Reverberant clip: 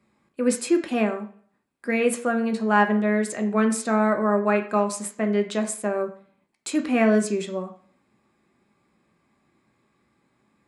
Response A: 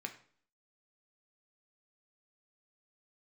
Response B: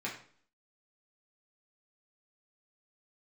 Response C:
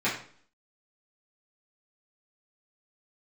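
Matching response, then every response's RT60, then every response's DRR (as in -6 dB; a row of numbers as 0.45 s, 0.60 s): A; 0.50 s, 0.50 s, 0.50 s; 4.0 dB, -5.0 dB, -10.5 dB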